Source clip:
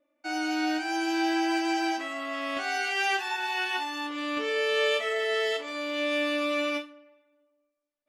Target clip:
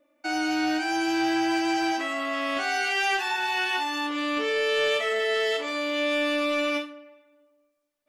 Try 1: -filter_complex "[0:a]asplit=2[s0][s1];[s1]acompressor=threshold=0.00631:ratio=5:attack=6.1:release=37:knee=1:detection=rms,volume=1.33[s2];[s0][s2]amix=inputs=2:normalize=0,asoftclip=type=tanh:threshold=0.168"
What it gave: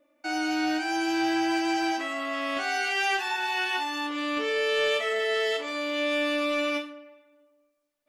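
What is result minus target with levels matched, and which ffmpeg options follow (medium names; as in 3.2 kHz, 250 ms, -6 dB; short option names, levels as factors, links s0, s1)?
compression: peak gain reduction +6.5 dB
-filter_complex "[0:a]asplit=2[s0][s1];[s1]acompressor=threshold=0.0158:ratio=5:attack=6.1:release=37:knee=1:detection=rms,volume=1.33[s2];[s0][s2]amix=inputs=2:normalize=0,asoftclip=type=tanh:threshold=0.168"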